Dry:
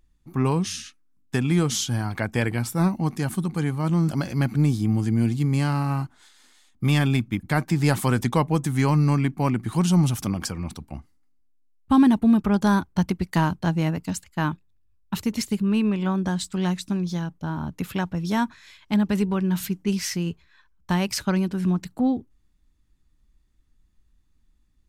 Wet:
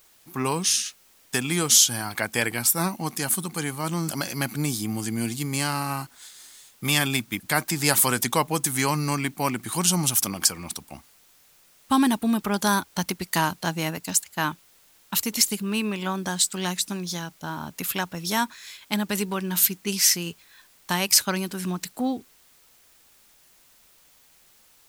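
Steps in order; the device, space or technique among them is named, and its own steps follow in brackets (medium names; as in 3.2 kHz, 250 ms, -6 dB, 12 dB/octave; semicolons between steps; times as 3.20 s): turntable without a phono preamp (RIAA curve recording; white noise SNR 31 dB); trim +1.5 dB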